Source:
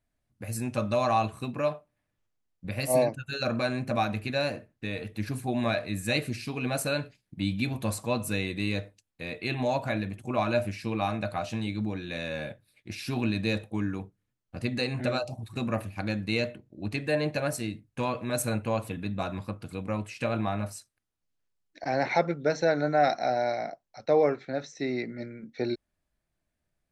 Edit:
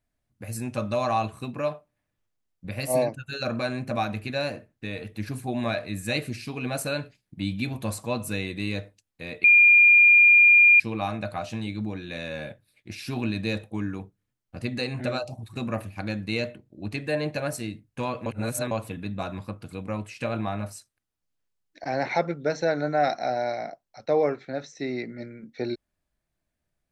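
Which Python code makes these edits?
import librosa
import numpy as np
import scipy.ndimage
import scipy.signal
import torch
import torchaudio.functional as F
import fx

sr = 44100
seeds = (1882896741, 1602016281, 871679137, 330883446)

y = fx.edit(x, sr, fx.bleep(start_s=9.44, length_s=1.36, hz=2410.0, db=-11.5),
    fx.reverse_span(start_s=18.26, length_s=0.45), tone=tone)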